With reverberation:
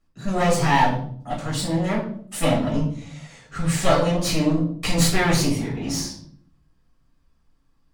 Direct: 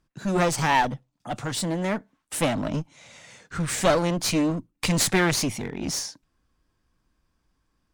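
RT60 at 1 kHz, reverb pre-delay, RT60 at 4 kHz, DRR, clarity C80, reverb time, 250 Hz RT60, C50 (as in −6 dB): 0.50 s, 4 ms, 0.40 s, −6.0 dB, 9.5 dB, 0.55 s, 0.90 s, 6.5 dB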